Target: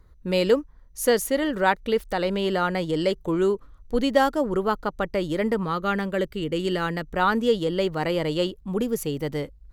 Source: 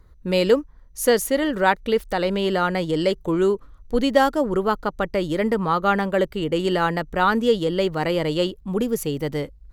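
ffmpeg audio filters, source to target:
ffmpeg -i in.wav -filter_complex "[0:a]asettb=1/sr,asplit=3[link_01][link_02][link_03];[link_01]atrim=end=5.634[link_04];[link_02]atrim=start=5.63:end=7.12,asetpts=PTS-STARTPTS,afade=type=in:duration=0.004:curve=qsin,afade=type=out:start_time=1.486:duration=0.004:curve=qsin,equalizer=frequency=820:width=1.3:gain=-7[link_05];[link_03]atrim=start=7.116[link_06];[link_04][link_05]acrossfade=duration=0.004:curve1=hsin:curve2=qsin[link_07];[link_07][link_06]acrossfade=duration=0.004:curve1=qsin:curve2=hsin,volume=-2.5dB" out.wav

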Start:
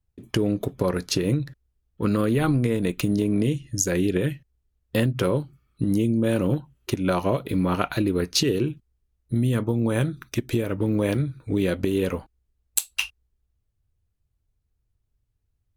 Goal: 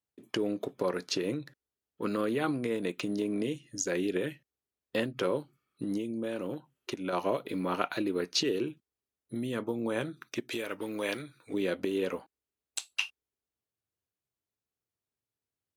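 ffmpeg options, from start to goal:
ffmpeg -i in.wav -filter_complex "[0:a]acrossover=split=7000[link_01][link_02];[link_02]acompressor=threshold=-51dB:ratio=4:attack=1:release=60[link_03];[link_01][link_03]amix=inputs=2:normalize=0,highpass=290,asettb=1/sr,asplit=3[link_04][link_05][link_06];[link_04]atrim=end=5.974[link_07];[link_05]atrim=start=5.97:end=7.13,asetpts=PTS-STARTPTS,afade=type=in:duration=0.004:curve=qsin,afade=type=out:start_time=1.156:duration=0.004:curve=qsin,acompressor=threshold=-27dB:ratio=3[link_08];[link_06]atrim=start=7.126[link_09];[link_07][link_08]acrossfade=duration=0.004:curve1=hsin:curve2=qsin[link_10];[link_10][link_09]acrossfade=duration=0.004:curve1=qsin:curve2=hsin,asettb=1/sr,asplit=3[link_11][link_12][link_13];[link_11]atrim=end=10.504[link_14];[link_12]atrim=start=10.5:end=11.54,asetpts=PTS-STARTPTS,afade=type=in:duration=0.004:curve=qsin,afade=type=out:start_time=1.036:duration=0.004:curve=qsin,tiltshelf=frequency=880:gain=-6.5[link_15];[link_13]atrim=start=11.536[link_16];[link_14][link_15]acrossfade=duration=0.004:curve1=hsin:curve2=qsin[link_17];[link_17][link_16]acrossfade=duration=0.004:curve1=qsin:curve2=hsin,volume=-5dB" out.wav

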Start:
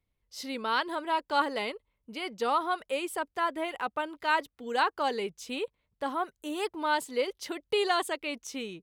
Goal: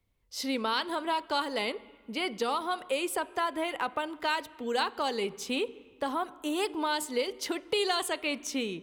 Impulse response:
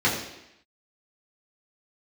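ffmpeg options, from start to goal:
-filter_complex "[0:a]acrossover=split=160|3000[link_01][link_02][link_03];[link_02]acompressor=threshold=-33dB:ratio=6[link_04];[link_01][link_04][link_03]amix=inputs=3:normalize=0,asplit=2[link_05][link_06];[1:a]atrim=start_sample=2205,asetrate=23373,aresample=44100[link_07];[link_06][link_07]afir=irnorm=-1:irlink=0,volume=-35dB[link_08];[link_05][link_08]amix=inputs=2:normalize=0,volume=5dB"

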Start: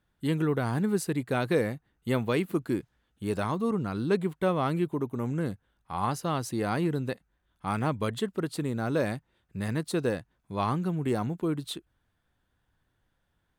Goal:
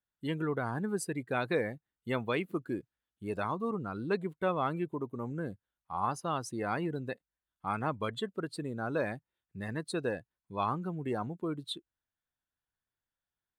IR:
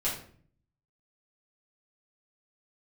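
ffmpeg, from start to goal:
-af "afftdn=noise_reduction=16:noise_floor=-39,lowshelf=frequency=500:gain=-9"

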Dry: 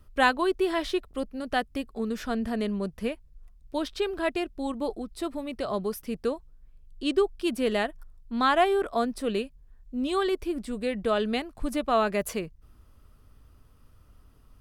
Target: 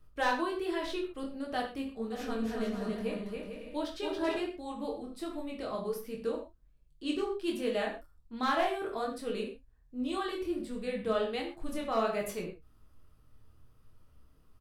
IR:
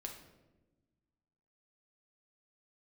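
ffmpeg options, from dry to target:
-filter_complex "[0:a]asoftclip=type=hard:threshold=-15.5dB,flanger=delay=20:depth=7.3:speed=1.3,asplit=3[link_01][link_02][link_03];[link_01]afade=type=out:start_time=2.11:duration=0.02[link_04];[link_02]aecho=1:1:280|448|548.8|609.3|645.6:0.631|0.398|0.251|0.158|0.1,afade=type=in:start_time=2.11:duration=0.02,afade=type=out:start_time=4.37:duration=0.02[link_05];[link_03]afade=type=in:start_time=4.37:duration=0.02[link_06];[link_04][link_05][link_06]amix=inputs=3:normalize=0[link_07];[1:a]atrim=start_sample=2205,afade=type=out:start_time=0.18:duration=0.01,atrim=end_sample=8379[link_08];[link_07][link_08]afir=irnorm=-1:irlink=0"

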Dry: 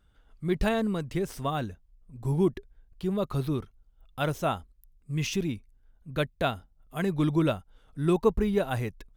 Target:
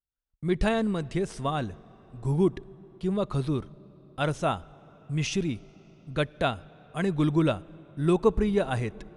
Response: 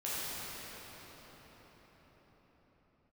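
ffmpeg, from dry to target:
-filter_complex "[0:a]agate=range=-35dB:threshold=-48dB:ratio=16:detection=peak,asplit=2[link_01][link_02];[1:a]atrim=start_sample=2205,lowpass=7000[link_03];[link_02][link_03]afir=irnorm=-1:irlink=0,volume=-28dB[link_04];[link_01][link_04]amix=inputs=2:normalize=0,aresample=22050,aresample=44100,volume=1dB"

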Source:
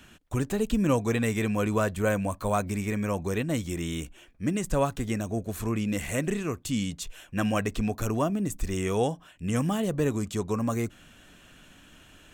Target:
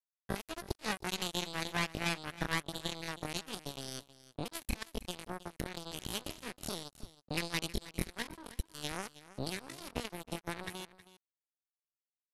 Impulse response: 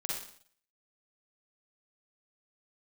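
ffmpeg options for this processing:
-filter_complex "[0:a]bandreject=frequency=860:width=12,asubboost=boost=8:cutoff=160,acrossover=split=870|1200[link_01][link_02][link_03];[link_01]acompressor=threshold=-29dB:ratio=12[link_04];[link_04][link_02][link_03]amix=inputs=3:normalize=0,adynamicequalizer=threshold=0.00112:dfrequency=3900:dqfactor=4.5:tfrequency=3900:tqfactor=4.5:attack=5:release=100:ratio=0.375:range=2:mode=cutabove:tftype=bell,aresample=16000,acrusher=bits=3:mix=0:aa=0.5,aresample=44100,asetrate=70004,aresample=44100,atempo=0.629961,aecho=1:1:318:0.15,volume=-1.5dB"

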